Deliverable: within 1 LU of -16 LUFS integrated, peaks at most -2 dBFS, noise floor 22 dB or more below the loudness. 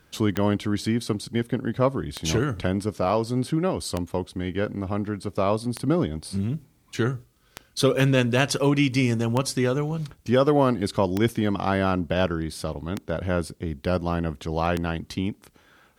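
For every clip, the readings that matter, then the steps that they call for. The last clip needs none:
clicks found 9; loudness -25.0 LUFS; peak level -7.0 dBFS; loudness target -16.0 LUFS
-> de-click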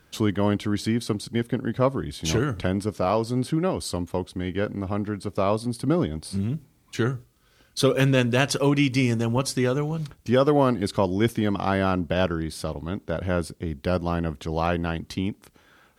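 clicks found 0; loudness -25.0 LUFS; peak level -7.5 dBFS; loudness target -16.0 LUFS
-> trim +9 dB; peak limiter -2 dBFS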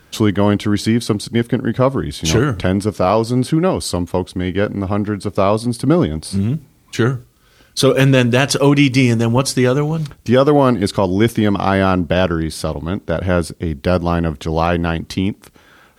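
loudness -16.5 LUFS; peak level -2.0 dBFS; noise floor -51 dBFS

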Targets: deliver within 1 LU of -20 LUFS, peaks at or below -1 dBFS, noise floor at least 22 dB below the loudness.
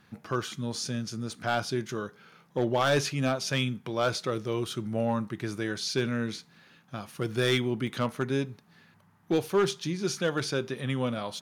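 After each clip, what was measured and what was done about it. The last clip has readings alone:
clipped samples 0.4%; clipping level -18.0 dBFS; dropouts 1; longest dropout 3.5 ms; loudness -30.0 LUFS; peak level -18.0 dBFS; loudness target -20.0 LUFS
-> clip repair -18 dBFS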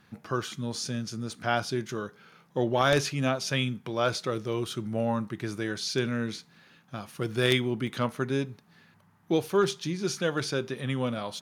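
clipped samples 0.0%; dropouts 1; longest dropout 3.5 ms
-> interpolate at 7.87 s, 3.5 ms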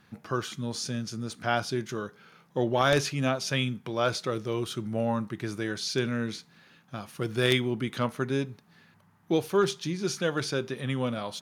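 dropouts 0; loudness -29.5 LUFS; peak level -9.0 dBFS; loudness target -20.0 LUFS
-> trim +9.5 dB; peak limiter -1 dBFS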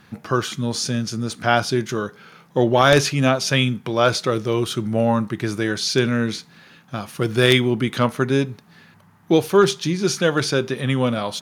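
loudness -20.0 LUFS; peak level -1.0 dBFS; noise floor -52 dBFS

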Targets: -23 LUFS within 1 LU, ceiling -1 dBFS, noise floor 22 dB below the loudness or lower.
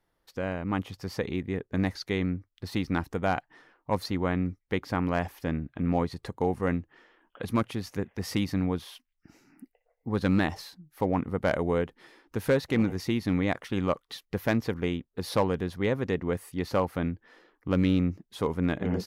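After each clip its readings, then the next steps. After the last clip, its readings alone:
loudness -30.0 LUFS; peak level -15.5 dBFS; loudness target -23.0 LUFS
-> trim +7 dB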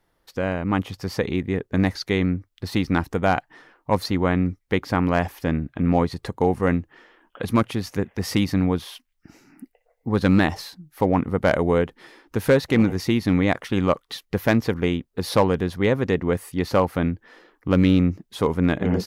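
loudness -23.0 LUFS; peak level -8.5 dBFS; noise floor -71 dBFS

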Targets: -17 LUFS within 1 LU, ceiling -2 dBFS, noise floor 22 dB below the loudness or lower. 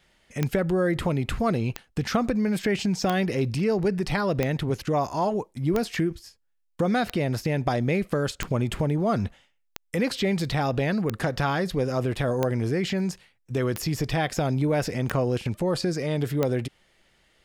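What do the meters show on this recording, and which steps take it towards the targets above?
clicks found 13; loudness -26.0 LUFS; peak level -10.0 dBFS; loudness target -17.0 LUFS
-> de-click; trim +9 dB; peak limiter -2 dBFS

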